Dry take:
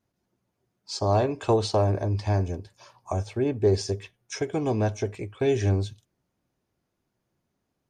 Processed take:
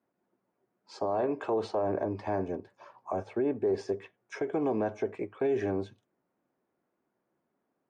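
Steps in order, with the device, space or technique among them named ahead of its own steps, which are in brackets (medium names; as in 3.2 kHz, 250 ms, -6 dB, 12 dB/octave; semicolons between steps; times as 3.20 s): DJ mixer with the lows and highs turned down (three-band isolator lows -23 dB, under 200 Hz, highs -21 dB, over 2.1 kHz; peak limiter -23 dBFS, peak gain reduction 10.5 dB); trim +2 dB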